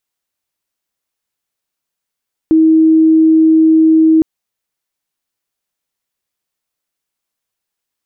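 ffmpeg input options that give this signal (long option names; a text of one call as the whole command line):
ffmpeg -f lavfi -i "aevalsrc='0.562*sin(2*PI*319*t)':duration=1.71:sample_rate=44100" out.wav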